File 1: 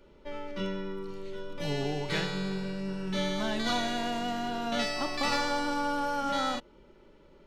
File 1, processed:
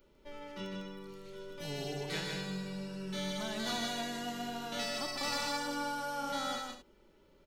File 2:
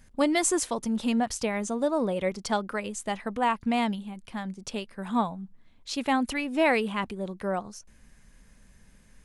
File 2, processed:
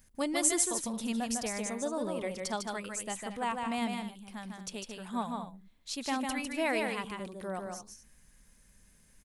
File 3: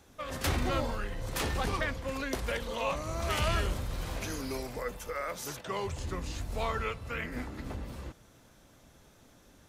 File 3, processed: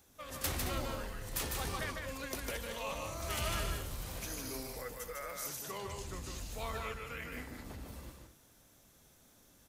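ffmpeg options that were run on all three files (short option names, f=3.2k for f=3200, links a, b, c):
-af "aemphasis=mode=production:type=50kf,aecho=1:1:151.6|221.6:0.631|0.251,volume=-9dB"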